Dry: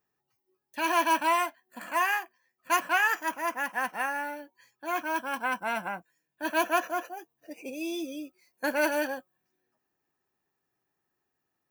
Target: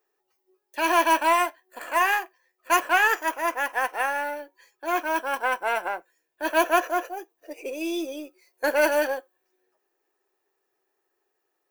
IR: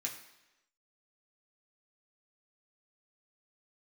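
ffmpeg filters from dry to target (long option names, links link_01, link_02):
-filter_complex "[0:a]aeval=exprs='if(lt(val(0),0),0.708*val(0),val(0))':channel_layout=same,lowshelf=frequency=280:width_type=q:width=3:gain=-12.5,asplit=2[link_01][link_02];[1:a]atrim=start_sample=2205,afade=type=out:start_time=0.14:duration=0.01,atrim=end_sample=6615[link_03];[link_02][link_03]afir=irnorm=-1:irlink=0,volume=-19.5dB[link_04];[link_01][link_04]amix=inputs=2:normalize=0,volume=4.5dB"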